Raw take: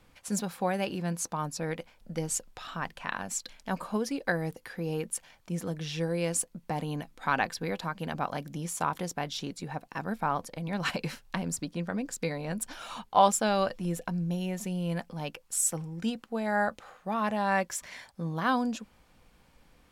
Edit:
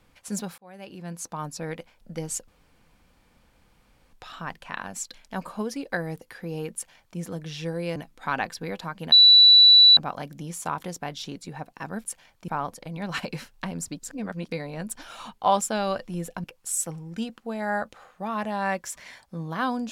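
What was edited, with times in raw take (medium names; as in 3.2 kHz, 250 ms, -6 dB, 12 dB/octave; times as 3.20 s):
0.58–1.45 s: fade in
2.48 s: insert room tone 1.65 s
5.09–5.53 s: copy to 10.19 s
6.31–6.96 s: delete
8.12 s: add tone 3.95 kHz -9.5 dBFS 0.85 s
11.70–12.21 s: reverse
14.15–15.30 s: delete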